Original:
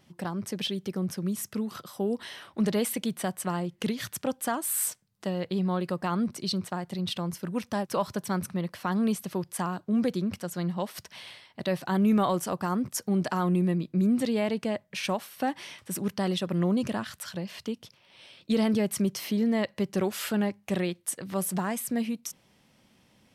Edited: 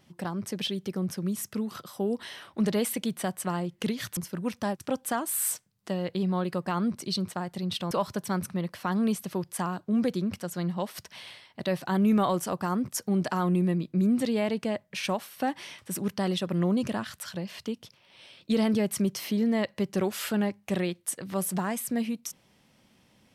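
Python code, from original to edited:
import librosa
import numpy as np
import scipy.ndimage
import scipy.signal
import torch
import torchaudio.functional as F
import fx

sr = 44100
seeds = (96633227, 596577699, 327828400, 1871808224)

y = fx.edit(x, sr, fx.move(start_s=7.27, length_s=0.64, to_s=4.17), tone=tone)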